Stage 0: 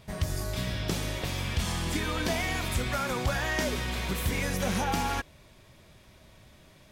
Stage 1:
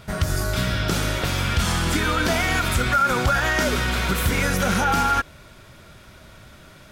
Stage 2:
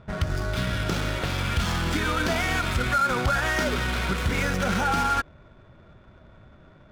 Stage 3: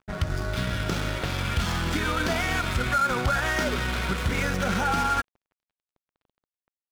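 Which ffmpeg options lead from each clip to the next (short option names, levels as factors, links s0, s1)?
-af "equalizer=f=1400:w=7.7:g=14.5,alimiter=limit=0.1:level=0:latency=1:release=66,volume=2.66"
-af "aeval=exprs='val(0)+0.00251*sin(2*PI*3500*n/s)':c=same,adynamicsmooth=sensitivity=6:basefreq=1000,volume=0.668"
-af "aeval=exprs='sgn(val(0))*max(abs(val(0))-0.00794,0)':c=same"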